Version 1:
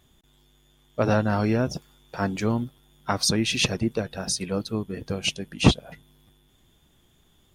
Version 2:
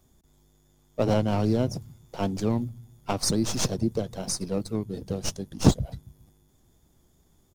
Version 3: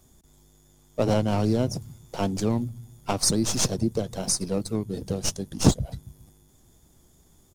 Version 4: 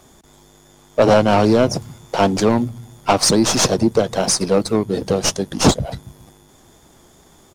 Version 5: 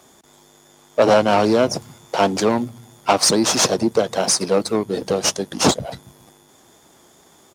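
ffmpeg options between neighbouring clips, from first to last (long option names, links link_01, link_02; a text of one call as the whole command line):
ffmpeg -i in.wav -filter_complex "[0:a]acrossover=split=140|1200|4400[link_01][link_02][link_03][link_04];[link_01]aecho=1:1:134|268|402|536:0.473|0.17|0.0613|0.0221[link_05];[link_03]aeval=exprs='abs(val(0))':channel_layout=same[link_06];[link_05][link_02][link_06][link_04]amix=inputs=4:normalize=0,volume=-1dB" out.wav
ffmpeg -i in.wav -filter_complex "[0:a]equalizer=frequency=8800:width=0.82:gain=5.5,asplit=2[link_01][link_02];[link_02]acompressor=threshold=-32dB:ratio=6,volume=-2dB[link_03];[link_01][link_03]amix=inputs=2:normalize=0,volume=-1dB" out.wav
ffmpeg -i in.wav -filter_complex "[0:a]asplit=2[link_01][link_02];[link_02]highpass=frequency=720:poles=1,volume=17dB,asoftclip=type=tanh:threshold=-1.5dB[link_03];[link_01][link_03]amix=inputs=2:normalize=0,lowpass=frequency=2100:poles=1,volume=-6dB,asoftclip=type=tanh:threshold=-11.5dB,volume=7.5dB" out.wav
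ffmpeg -i in.wav -af "highpass=frequency=280:poles=1" out.wav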